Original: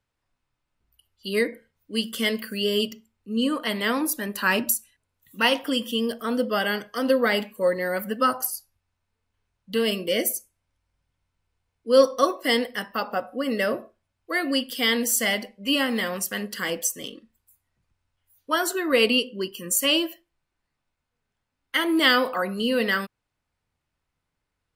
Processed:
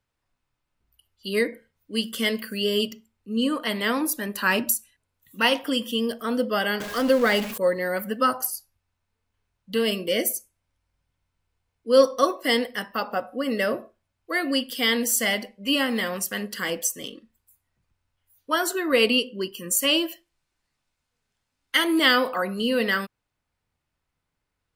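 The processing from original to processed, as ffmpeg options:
-filter_complex "[0:a]asettb=1/sr,asplit=3[s0][s1][s2];[s0]atrim=end=6.804[s3];[s1]atrim=start=6.8:end=7.58,asetpts=PTS-STARTPTS,afade=t=in:d=0.004:c=qsin,afade=t=out:st=0.776:d=0.004:c=qsin,aeval=exprs='val(0)+0.5*0.0355*sgn(val(0))':c=same[s4];[s2]atrim=start=7.576[s5];[s3][s4]acrossfade=d=0.004:c1=hsin:c2=qsin[s6];[s6][s5]acrossfade=d=0.004:c1=qsin:c2=hsin,asettb=1/sr,asplit=3[s7][s8][s9];[s7]atrim=end=20.084[s10];[s8]atrim=start=20.08:end=21.99,asetpts=PTS-STARTPTS,afade=t=in:d=0.004:c=qsin,afade=t=out:st=1.906:d=0.004:c=qsin,equalizer=f=6500:t=o:w=2.3:g=7.5[s11];[s9]atrim=start=21.986[s12];[s10][s11]acrossfade=d=0.004:c1=hsin:c2=qsin[s13];[s13][s12]acrossfade=d=0.004:c1=qsin:c2=hsin"

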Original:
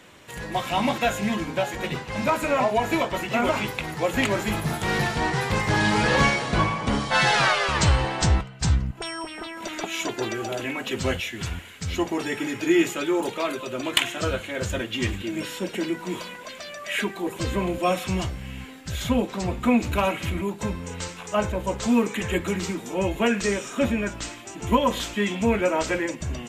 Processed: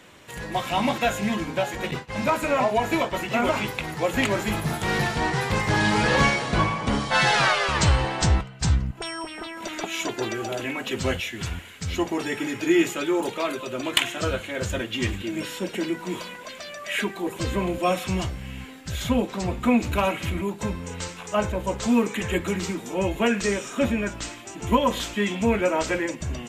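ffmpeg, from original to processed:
-filter_complex "[0:a]asettb=1/sr,asplit=3[s0][s1][s2];[s0]atrim=end=1.914[s3];[s1]atrim=start=1.91:end=3.19,asetpts=PTS-STARTPTS,afade=t=in:d=0.004:c=qsin,afade=t=out:st=1.276:d=0.004:c=qsin,agate=range=0.0224:threshold=0.0282:ratio=3:release=100:detection=peak[s4];[s2]atrim=start=3.186[s5];[s3][s4]acrossfade=d=0.004:c1=hsin:c2=qsin[s6];[s6][s5]acrossfade=d=0.004:c1=qsin:c2=hsin"

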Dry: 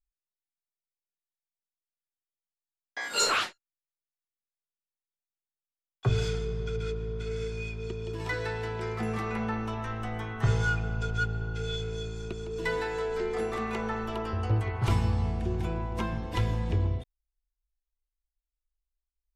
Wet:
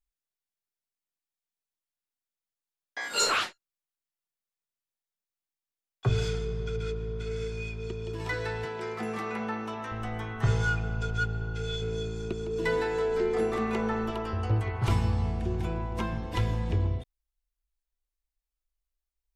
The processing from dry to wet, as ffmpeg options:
-filter_complex "[0:a]asettb=1/sr,asplit=3[s0][s1][s2];[s0]atrim=end=8.654[s3];[s1]atrim=start=8.65:end=9.92,asetpts=PTS-STARTPTS,afade=t=in:d=0.004:c=qsin,afade=t=out:st=1.266:d=0.004:c=qsin,highpass=200[s4];[s2]atrim=start=9.916[s5];[s3][s4]acrossfade=d=0.004:c1=hsin:c2=qsin[s6];[s6][s5]acrossfade=d=0.004:c1=qsin:c2=hsin,asettb=1/sr,asplit=3[s7][s8][s9];[s7]atrim=end=11.824[s10];[s8]atrim=start=11.82:end=14.11,asetpts=PTS-STARTPTS,afade=t=in:d=0.004:c=qsin,afade=t=out:st=2.286:d=0.004:c=qsin,equalizer=f=280:w=0.66:g=5.5[s11];[s9]atrim=start=14.106[s12];[s10][s11]acrossfade=d=0.004:c1=hsin:c2=qsin[s13];[s13][s12]acrossfade=d=0.004:c1=qsin:c2=hsin"

